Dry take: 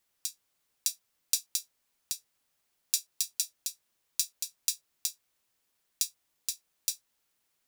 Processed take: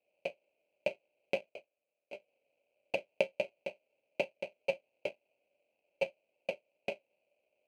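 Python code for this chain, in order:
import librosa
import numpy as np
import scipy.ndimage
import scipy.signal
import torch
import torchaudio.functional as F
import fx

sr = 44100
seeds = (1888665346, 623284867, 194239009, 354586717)

y = fx.median_filter(x, sr, points=15, at=(1.49, 2.13))
y = fx.sample_hold(y, sr, seeds[0], rate_hz=1800.0, jitter_pct=0)
y = fx.double_bandpass(y, sr, hz=1200.0, octaves=2.1)
y = y * librosa.db_to_amplitude(7.5)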